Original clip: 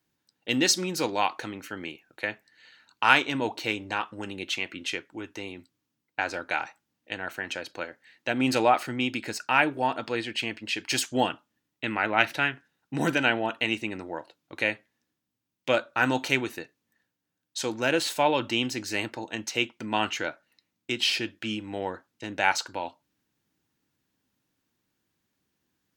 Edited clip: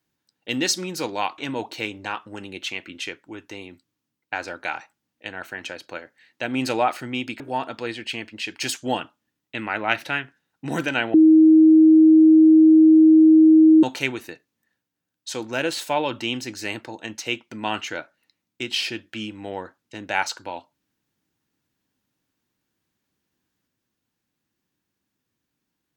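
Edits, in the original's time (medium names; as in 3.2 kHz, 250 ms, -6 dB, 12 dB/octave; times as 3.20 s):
1.38–3.24 s: delete
9.26–9.69 s: delete
13.43–16.12 s: bleep 316 Hz -8.5 dBFS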